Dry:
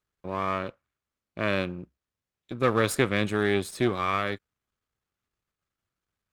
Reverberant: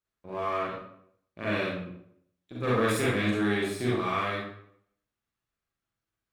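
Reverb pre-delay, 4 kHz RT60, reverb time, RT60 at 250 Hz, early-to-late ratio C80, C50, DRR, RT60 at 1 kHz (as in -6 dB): 35 ms, 0.50 s, 0.70 s, 0.70 s, 3.5 dB, -1.5 dB, -7.5 dB, 0.70 s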